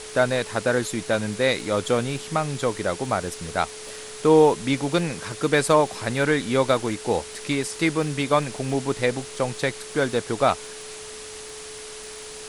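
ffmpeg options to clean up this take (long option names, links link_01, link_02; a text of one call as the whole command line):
ffmpeg -i in.wav -af "adeclick=threshold=4,bandreject=frequency=430:width=30,afwtdn=0.014" out.wav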